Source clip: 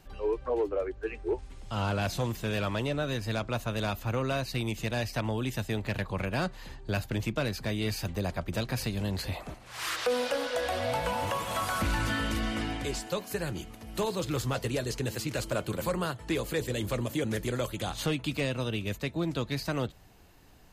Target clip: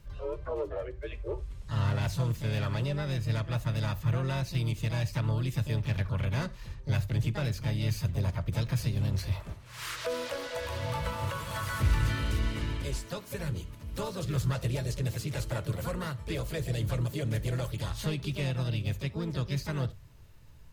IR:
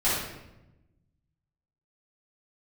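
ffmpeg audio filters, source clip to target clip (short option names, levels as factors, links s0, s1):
-filter_complex "[0:a]asplit=2[s0][s1];[s1]asetrate=58866,aresample=44100,atempo=0.749154,volume=0.562[s2];[s0][s2]amix=inputs=2:normalize=0,asuperstop=centerf=750:order=4:qfactor=5.9,lowshelf=f=170:t=q:w=1.5:g=8.5,asplit=2[s3][s4];[1:a]atrim=start_sample=2205,atrim=end_sample=3969[s5];[s4][s5]afir=irnorm=-1:irlink=0,volume=0.0447[s6];[s3][s6]amix=inputs=2:normalize=0,volume=0.501"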